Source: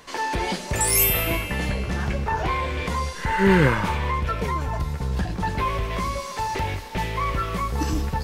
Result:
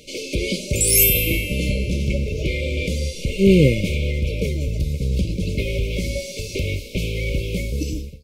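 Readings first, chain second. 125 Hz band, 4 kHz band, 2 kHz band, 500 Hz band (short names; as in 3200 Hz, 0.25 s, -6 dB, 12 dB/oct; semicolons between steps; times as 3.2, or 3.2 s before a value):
+4.0 dB, +4.5 dB, -1.0 dB, +4.0 dB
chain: ending faded out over 0.63 s; brick-wall FIR band-stop 620–2100 Hz; gain +4.5 dB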